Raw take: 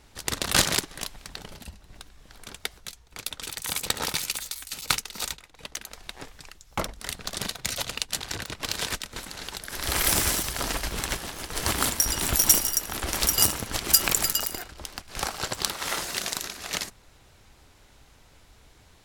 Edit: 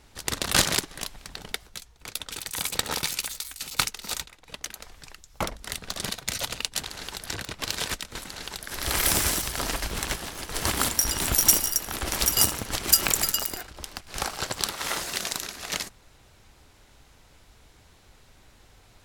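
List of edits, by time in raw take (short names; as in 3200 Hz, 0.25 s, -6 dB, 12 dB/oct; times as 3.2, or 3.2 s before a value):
1.52–2.63 cut
6.03–6.29 cut
9.3–9.66 copy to 8.27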